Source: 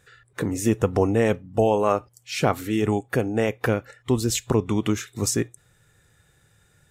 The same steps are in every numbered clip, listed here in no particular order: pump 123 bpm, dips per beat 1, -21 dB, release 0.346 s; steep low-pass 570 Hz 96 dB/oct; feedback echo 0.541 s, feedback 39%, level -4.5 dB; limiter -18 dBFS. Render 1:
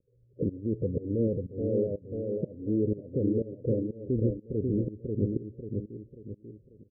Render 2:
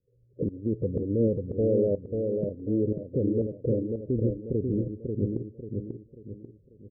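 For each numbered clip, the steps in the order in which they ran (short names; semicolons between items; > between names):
limiter > feedback echo > pump > steep low-pass; steep low-pass > pump > limiter > feedback echo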